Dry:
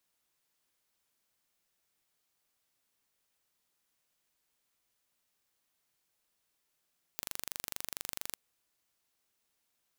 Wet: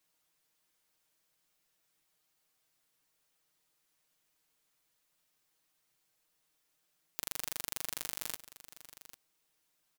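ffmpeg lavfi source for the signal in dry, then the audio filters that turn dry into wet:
-f lavfi -i "aevalsrc='0.316*eq(mod(n,1807),0)':duration=1.16:sample_rate=44100"
-af "aecho=1:1:6.4:0.74,aecho=1:1:797:0.178"

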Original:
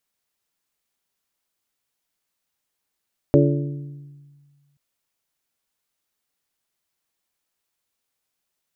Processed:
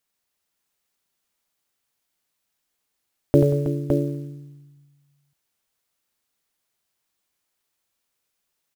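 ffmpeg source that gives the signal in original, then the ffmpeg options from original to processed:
-f lavfi -i "aevalsrc='0.188*pow(10,-3*t/1.73)*sin(2*PI*143*t)+0.178*pow(10,-3*t/1.065)*sin(2*PI*286*t)+0.168*pow(10,-3*t/0.937)*sin(2*PI*343.2*t)+0.158*pow(10,-3*t/0.802)*sin(2*PI*429*t)+0.15*pow(10,-3*t/0.656)*sin(2*PI*572*t)':duration=1.43:sample_rate=44100"
-filter_complex "[0:a]acrusher=bits=8:mode=log:mix=0:aa=0.000001,asplit=2[link_01][link_02];[link_02]aecho=0:1:86|184|321|562:0.447|0.15|0.266|0.562[link_03];[link_01][link_03]amix=inputs=2:normalize=0"

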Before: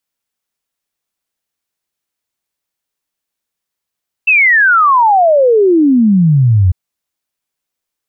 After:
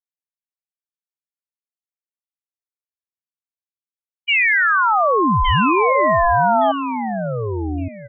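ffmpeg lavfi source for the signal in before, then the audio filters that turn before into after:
-f lavfi -i "aevalsrc='0.531*clip(min(t,2.45-t)/0.01,0,1)*sin(2*PI*2700*2.45/log(86/2700)*(exp(log(86/2700)*t/2.45)-1))':duration=2.45:sample_rate=44100"
-filter_complex "[0:a]agate=range=-33dB:threshold=-5dB:ratio=3:detection=peak,asplit=2[link_01][link_02];[link_02]aecho=0:1:1166|2332|3498:0.422|0.101|0.0243[link_03];[link_01][link_03]amix=inputs=2:normalize=0,aeval=exprs='val(0)*sin(2*PI*520*n/s+520*0.65/0.32*sin(2*PI*0.32*n/s))':channel_layout=same"

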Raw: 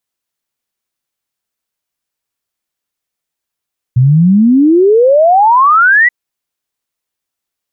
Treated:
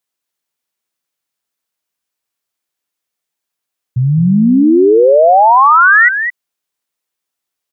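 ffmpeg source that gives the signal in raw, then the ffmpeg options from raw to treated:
-f lavfi -i "aevalsrc='0.631*clip(min(t,2.13-t)/0.01,0,1)*sin(2*PI*120*2.13/log(2000/120)*(exp(log(2000/120)*t/2.13)-1))':duration=2.13:sample_rate=44100"
-filter_complex "[0:a]lowshelf=frequency=110:gain=-11,asplit=2[link_01][link_02];[link_02]aecho=0:1:213:0.376[link_03];[link_01][link_03]amix=inputs=2:normalize=0"

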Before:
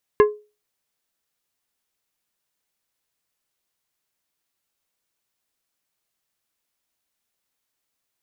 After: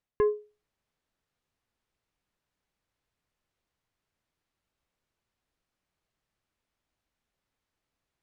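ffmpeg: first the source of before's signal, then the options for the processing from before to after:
-f lavfi -i "aevalsrc='0.447*pow(10,-3*t/0.3)*sin(2*PI*420*t)+0.211*pow(10,-3*t/0.158)*sin(2*PI*1050*t)+0.1*pow(10,-3*t/0.114)*sin(2*PI*1680*t)+0.0473*pow(10,-3*t/0.097)*sin(2*PI*2100*t)+0.0224*pow(10,-3*t/0.081)*sin(2*PI*2730*t)':duration=0.89:sample_rate=44100"
-af "aemphasis=mode=reproduction:type=75fm,areverse,acompressor=threshold=-25dB:ratio=6,areverse,lowshelf=frequency=150:gain=11.5"

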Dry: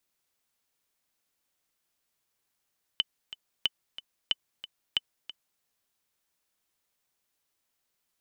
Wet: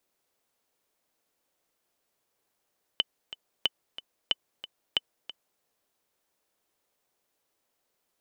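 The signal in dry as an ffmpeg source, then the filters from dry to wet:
-f lavfi -i "aevalsrc='pow(10,(-11.5-15*gte(mod(t,2*60/183),60/183))/20)*sin(2*PI*3020*mod(t,60/183))*exp(-6.91*mod(t,60/183)/0.03)':duration=2.62:sample_rate=44100"
-af "equalizer=frequency=500:width=0.62:gain=9.5"

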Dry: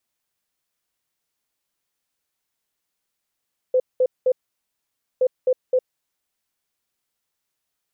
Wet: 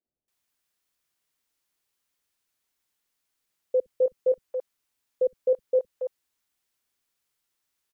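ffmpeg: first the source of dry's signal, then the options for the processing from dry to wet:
-f lavfi -i "aevalsrc='0.2*sin(2*PI*510*t)*clip(min(mod(mod(t,1.47),0.26),0.06-mod(mod(t,1.47),0.26))/0.005,0,1)*lt(mod(t,1.47),0.78)':duration=2.94:sample_rate=44100"
-filter_complex "[0:a]acrossover=split=160|630[link_01][link_02][link_03];[link_01]adelay=60[link_04];[link_03]adelay=280[link_05];[link_04][link_02][link_05]amix=inputs=3:normalize=0"

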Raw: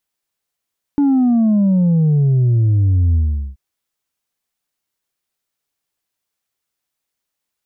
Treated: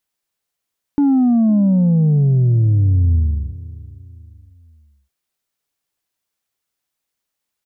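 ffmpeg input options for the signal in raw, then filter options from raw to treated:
-f lavfi -i "aevalsrc='0.282*clip((2.58-t)/0.41,0,1)*tanh(1.33*sin(2*PI*290*2.58/log(65/290)*(exp(log(65/290)*t/2.58)-1)))/tanh(1.33)':duration=2.58:sample_rate=44100"
-filter_complex "[0:a]asplit=2[link_01][link_02];[link_02]adelay=511,lowpass=frequency=1100:poles=1,volume=-18.5dB,asplit=2[link_03][link_04];[link_04]adelay=511,lowpass=frequency=1100:poles=1,volume=0.43,asplit=2[link_05][link_06];[link_06]adelay=511,lowpass=frequency=1100:poles=1,volume=0.43[link_07];[link_01][link_03][link_05][link_07]amix=inputs=4:normalize=0"

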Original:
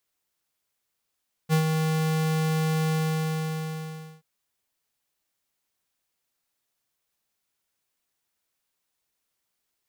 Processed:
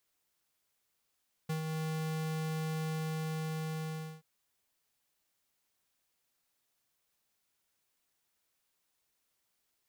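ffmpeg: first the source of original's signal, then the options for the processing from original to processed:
-f lavfi -i "aevalsrc='0.106*(2*lt(mod(158*t,1),0.5)-1)':duration=2.73:sample_rate=44100,afade=type=in:duration=0.042,afade=type=out:start_time=0.042:duration=0.096:silence=0.562,afade=type=out:start_time=1.43:duration=1.3"
-af "acompressor=threshold=-37dB:ratio=8"

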